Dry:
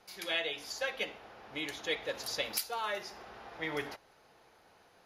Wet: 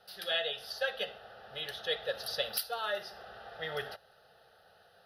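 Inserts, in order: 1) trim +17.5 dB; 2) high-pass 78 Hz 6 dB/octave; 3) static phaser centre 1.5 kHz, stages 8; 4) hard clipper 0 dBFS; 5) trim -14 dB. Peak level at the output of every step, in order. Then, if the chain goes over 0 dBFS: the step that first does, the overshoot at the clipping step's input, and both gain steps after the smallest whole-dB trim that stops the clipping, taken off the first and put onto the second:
-0.5 dBFS, -0.5 dBFS, -3.5 dBFS, -3.5 dBFS, -17.5 dBFS; nothing clips

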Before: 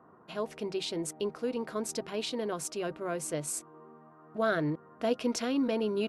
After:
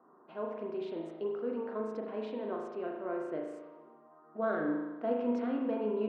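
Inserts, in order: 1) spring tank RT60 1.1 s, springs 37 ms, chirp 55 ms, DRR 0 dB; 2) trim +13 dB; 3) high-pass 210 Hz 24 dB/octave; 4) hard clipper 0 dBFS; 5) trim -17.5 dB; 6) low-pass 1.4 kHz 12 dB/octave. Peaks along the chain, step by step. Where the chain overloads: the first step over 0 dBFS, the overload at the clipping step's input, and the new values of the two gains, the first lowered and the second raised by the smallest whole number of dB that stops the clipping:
-14.5 dBFS, -1.5 dBFS, -2.0 dBFS, -2.0 dBFS, -19.5 dBFS, -20.5 dBFS; nothing clips

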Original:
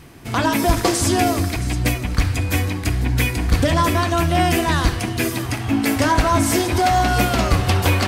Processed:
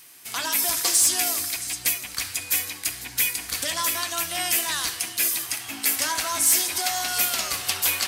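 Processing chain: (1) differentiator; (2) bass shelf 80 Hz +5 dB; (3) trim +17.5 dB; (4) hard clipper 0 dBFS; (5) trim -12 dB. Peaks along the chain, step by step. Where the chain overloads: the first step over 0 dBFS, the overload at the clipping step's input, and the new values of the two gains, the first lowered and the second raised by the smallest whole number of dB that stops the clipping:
-11.0 dBFS, -11.0 dBFS, +6.5 dBFS, 0.0 dBFS, -12.0 dBFS; step 3, 6.5 dB; step 3 +10.5 dB, step 5 -5 dB

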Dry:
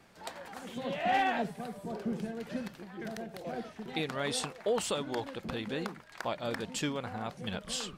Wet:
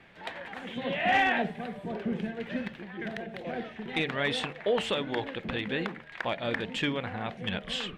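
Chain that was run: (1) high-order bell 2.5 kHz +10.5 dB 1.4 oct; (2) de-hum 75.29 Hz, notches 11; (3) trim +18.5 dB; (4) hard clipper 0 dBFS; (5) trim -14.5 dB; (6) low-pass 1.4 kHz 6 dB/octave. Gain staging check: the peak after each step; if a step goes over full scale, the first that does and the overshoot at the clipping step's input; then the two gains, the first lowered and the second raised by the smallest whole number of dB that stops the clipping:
-12.0 dBFS, -12.0 dBFS, +6.5 dBFS, 0.0 dBFS, -14.5 dBFS, -15.5 dBFS; step 3, 6.5 dB; step 3 +11.5 dB, step 5 -7.5 dB

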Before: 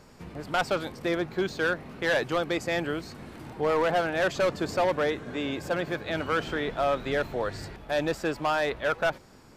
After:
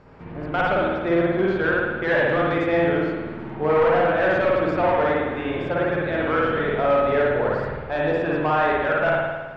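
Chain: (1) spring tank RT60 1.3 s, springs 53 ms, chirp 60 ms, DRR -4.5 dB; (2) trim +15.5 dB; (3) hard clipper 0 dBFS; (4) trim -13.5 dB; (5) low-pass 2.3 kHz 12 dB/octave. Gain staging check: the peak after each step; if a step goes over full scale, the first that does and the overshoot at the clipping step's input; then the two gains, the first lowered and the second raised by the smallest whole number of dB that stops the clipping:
-8.0 dBFS, +7.5 dBFS, 0.0 dBFS, -13.5 dBFS, -13.0 dBFS; step 2, 7.5 dB; step 2 +7.5 dB, step 4 -5.5 dB

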